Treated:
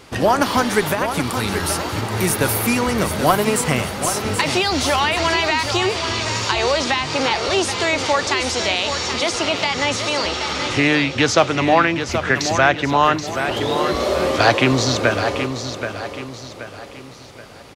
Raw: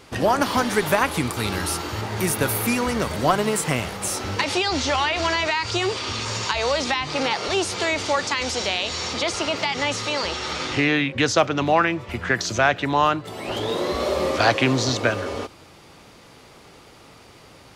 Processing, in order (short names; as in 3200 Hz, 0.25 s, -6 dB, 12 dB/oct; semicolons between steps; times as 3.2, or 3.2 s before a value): 0.86–1.63 compressor, threshold -21 dBFS, peak gain reduction 7.5 dB; on a send: feedback echo 0.778 s, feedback 40%, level -8.5 dB; on the sum: gain +3.5 dB